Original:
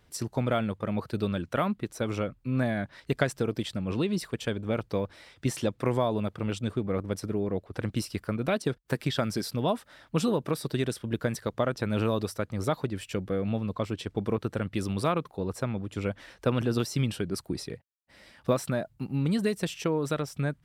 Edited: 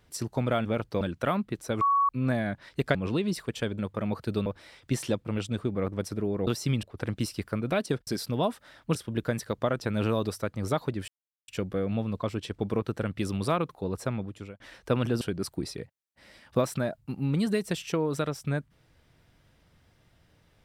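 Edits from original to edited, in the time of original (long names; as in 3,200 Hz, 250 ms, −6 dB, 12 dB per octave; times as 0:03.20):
0:00.65–0:01.32: swap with 0:04.64–0:05.00
0:02.12–0:02.40: beep over 1,120 Hz −20 dBFS
0:03.26–0:03.80: remove
0:05.79–0:06.37: remove
0:08.83–0:09.32: remove
0:10.20–0:10.91: remove
0:13.04: splice in silence 0.40 s
0:15.72–0:16.16: fade out
0:16.77–0:17.13: move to 0:07.59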